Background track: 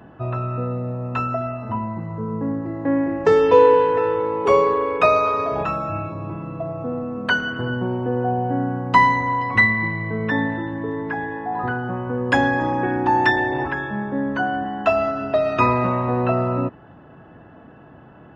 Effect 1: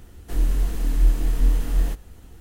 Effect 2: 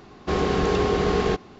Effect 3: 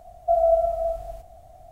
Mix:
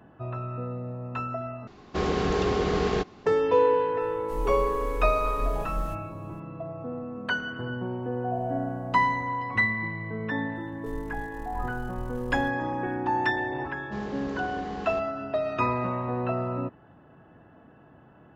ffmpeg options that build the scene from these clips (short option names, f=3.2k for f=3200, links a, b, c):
-filter_complex "[2:a]asplit=2[a][b];[1:a]asplit=2[c][d];[0:a]volume=-8.5dB[e];[a]aresample=22050,aresample=44100[f];[d]aeval=exprs='if(lt(val(0),0),0.251*val(0),val(0))':c=same[g];[e]asplit=2[h][i];[h]atrim=end=1.674[j];[f]atrim=end=1.59,asetpts=PTS-STARTPTS,volume=-3.5dB[k];[i]atrim=start=3.256[l];[c]atrim=end=2.4,asetpts=PTS-STARTPTS,volume=-11dB,afade=t=in:d=0.004:c=hsin,afade=t=out:st=2.396:d=0.004:c=hsin,adelay=4000[m];[3:a]atrim=end=1.71,asetpts=PTS-STARTPTS,volume=-16dB,afade=t=in:d=0.004:c=hsin,afade=t=out:st=1.706:d=0.004:c=hsin,adelay=8030[n];[g]atrim=end=2.4,asetpts=PTS-STARTPTS,volume=-15.5dB,afade=t=in:d=0.004:c=hsin,afade=t=out:st=2.396:d=0.004:c=hsin,adelay=10550[o];[b]atrim=end=1.59,asetpts=PTS-STARTPTS,volume=-17dB,afade=t=in:d=0.004:c=hsin,afade=t=out:st=1.586:d=0.004:c=hsin,adelay=601524S[p];[j][k]acrossfade=d=0.004:c1=hsin:c2=hsin[q];[q][l]acrossfade=d=0.004:c1=hsin:c2=hsin[r];[r][m][n][o][p]amix=inputs=5:normalize=0"